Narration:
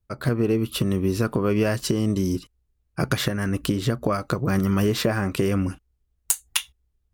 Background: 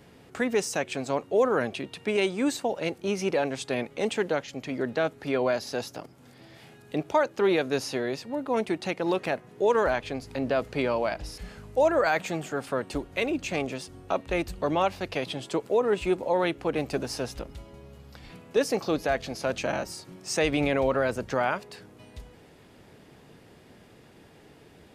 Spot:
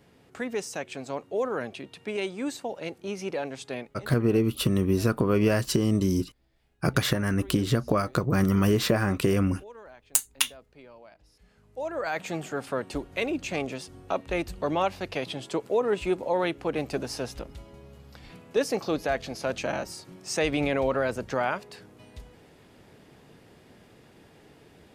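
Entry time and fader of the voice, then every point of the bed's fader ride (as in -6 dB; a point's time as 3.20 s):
3.85 s, -1.0 dB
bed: 3.77 s -5.5 dB
4.11 s -23.5 dB
11.25 s -23.5 dB
12.34 s -1 dB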